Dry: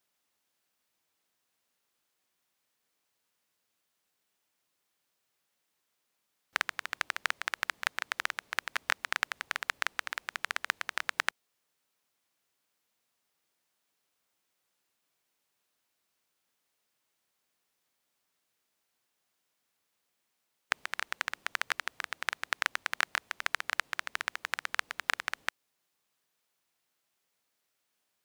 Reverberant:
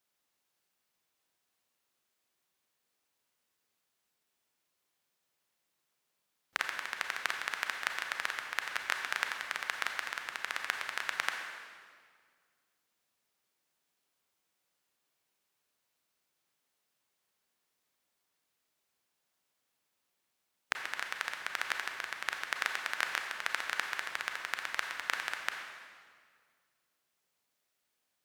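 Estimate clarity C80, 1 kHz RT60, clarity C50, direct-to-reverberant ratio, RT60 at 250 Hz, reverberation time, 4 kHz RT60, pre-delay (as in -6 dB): 5.5 dB, 1.8 s, 4.5 dB, 3.0 dB, 2.2 s, 1.9 s, 1.6 s, 29 ms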